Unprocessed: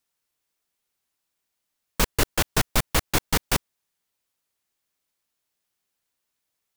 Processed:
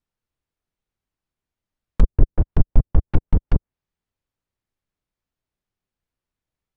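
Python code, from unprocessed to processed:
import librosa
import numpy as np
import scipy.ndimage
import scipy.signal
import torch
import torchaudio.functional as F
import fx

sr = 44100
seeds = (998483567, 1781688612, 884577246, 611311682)

y = fx.riaa(x, sr, side='playback')
y = fx.env_lowpass_down(y, sr, base_hz=530.0, full_db=-6.5)
y = y * 10.0 ** (-4.5 / 20.0)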